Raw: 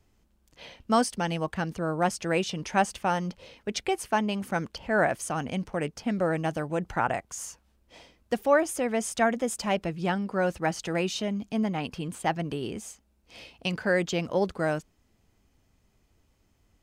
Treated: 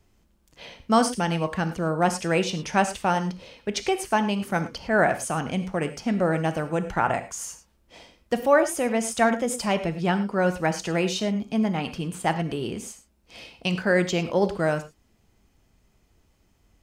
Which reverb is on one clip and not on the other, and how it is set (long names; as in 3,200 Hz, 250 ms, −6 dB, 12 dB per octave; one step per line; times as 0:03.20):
reverb whose tail is shaped and stops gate 130 ms flat, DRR 9 dB
level +3 dB